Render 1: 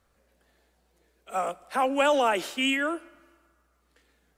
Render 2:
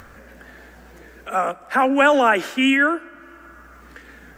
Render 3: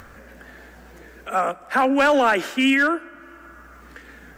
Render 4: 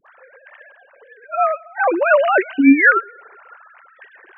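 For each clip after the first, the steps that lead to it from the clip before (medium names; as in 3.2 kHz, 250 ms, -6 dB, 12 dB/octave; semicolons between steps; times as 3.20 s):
fifteen-band graphic EQ 100 Hz +4 dB, 250 Hz +6 dB, 1.6 kHz +9 dB, 4 kHz -6 dB, 10 kHz -8 dB; in parallel at -1.5 dB: upward compressor, threshold -25 dBFS
in parallel at -2.5 dB: peak limiter -11 dBFS, peak gain reduction 7 dB; on the sum: hard clipper -7 dBFS, distortion -21 dB; trim -5 dB
formants replaced by sine waves; phase dispersion highs, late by 67 ms, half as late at 730 Hz; trim +4.5 dB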